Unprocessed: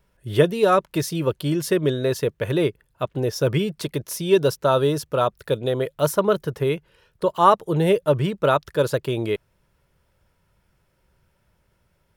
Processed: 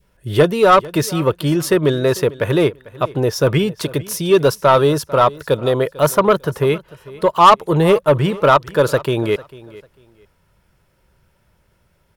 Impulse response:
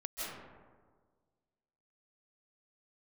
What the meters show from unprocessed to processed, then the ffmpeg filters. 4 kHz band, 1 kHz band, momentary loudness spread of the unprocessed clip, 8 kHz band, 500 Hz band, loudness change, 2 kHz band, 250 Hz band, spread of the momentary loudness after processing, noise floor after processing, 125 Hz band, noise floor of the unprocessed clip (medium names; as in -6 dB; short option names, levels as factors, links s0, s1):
+6.5 dB, +8.0 dB, 8 LU, +6.0 dB, +5.5 dB, +6.0 dB, +7.5 dB, +5.5 dB, 9 LU, -61 dBFS, +5.0 dB, -67 dBFS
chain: -filter_complex "[0:a]adynamicequalizer=threshold=0.02:dfrequency=1100:dqfactor=1.1:tfrequency=1100:tqfactor=1.1:attack=5:release=100:ratio=0.375:range=3.5:mode=boostabove:tftype=bell,acontrast=87,asplit=2[s0][s1];[s1]aecho=0:1:447|894:0.1|0.022[s2];[s0][s2]amix=inputs=2:normalize=0,volume=0.841"